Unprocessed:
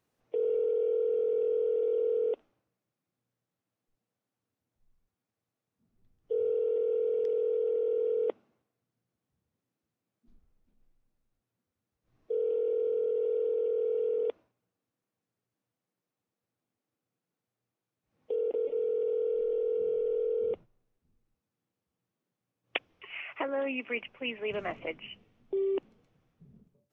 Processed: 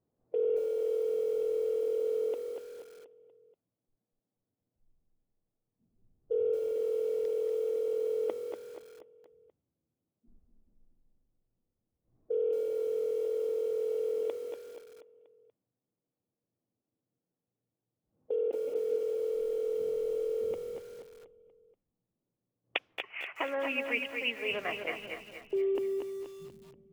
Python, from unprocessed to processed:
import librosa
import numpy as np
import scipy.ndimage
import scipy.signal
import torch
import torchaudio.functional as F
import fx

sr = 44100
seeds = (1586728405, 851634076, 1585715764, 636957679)

y = fx.env_lowpass(x, sr, base_hz=630.0, full_db=-30.0)
y = fx.tilt_eq(y, sr, slope=2.5, at=(22.76, 24.99))
y = fx.echo_feedback(y, sr, ms=240, feedback_pct=46, wet_db=-6.5)
y = fx.echo_crushed(y, sr, ms=225, feedback_pct=35, bits=8, wet_db=-10.5)